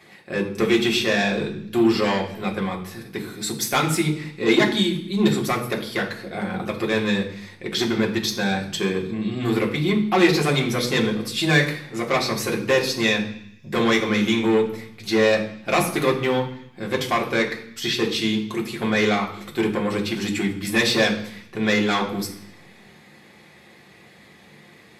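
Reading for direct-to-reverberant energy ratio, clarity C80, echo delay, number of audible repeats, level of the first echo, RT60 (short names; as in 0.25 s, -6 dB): -1.5 dB, 12.5 dB, none, none, none, 0.65 s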